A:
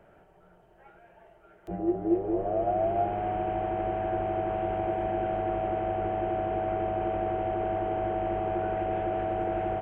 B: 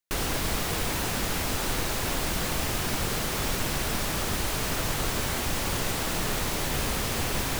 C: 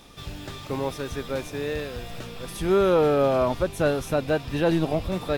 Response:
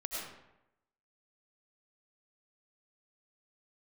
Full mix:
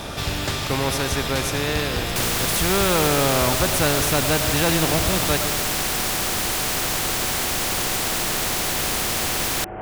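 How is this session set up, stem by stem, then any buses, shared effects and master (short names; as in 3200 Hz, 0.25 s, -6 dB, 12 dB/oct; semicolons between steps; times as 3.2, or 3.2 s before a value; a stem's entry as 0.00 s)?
-4.5 dB, 0.00 s, send -7 dB, LPF 2300 Hz 12 dB/oct; negative-ratio compressor -40 dBFS, ratio -1
-6.0 dB, 2.05 s, no send, dry
+0.5 dB, 0.00 s, send -10 dB, bell 80 Hz +12 dB 2.3 oct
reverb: on, RT60 0.90 s, pre-delay 60 ms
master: spectral compressor 2:1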